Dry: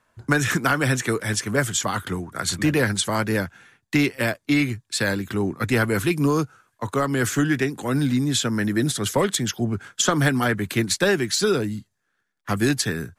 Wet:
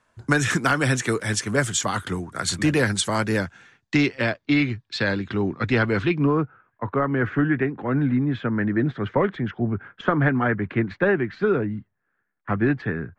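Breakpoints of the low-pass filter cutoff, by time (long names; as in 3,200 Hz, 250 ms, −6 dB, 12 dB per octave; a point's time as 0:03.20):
low-pass filter 24 dB per octave
0:03.24 10,000 Hz
0:04.40 4,500 Hz
0:05.96 4,500 Hz
0:06.39 2,100 Hz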